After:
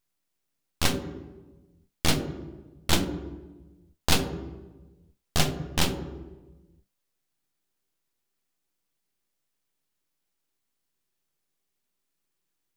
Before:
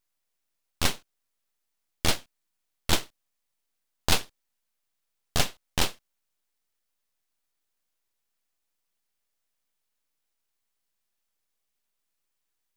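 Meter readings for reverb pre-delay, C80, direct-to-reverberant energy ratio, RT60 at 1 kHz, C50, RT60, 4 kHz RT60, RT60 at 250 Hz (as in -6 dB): 3 ms, 9.5 dB, 6.0 dB, 1.1 s, 7.5 dB, 1.2 s, 0.75 s, 1.5 s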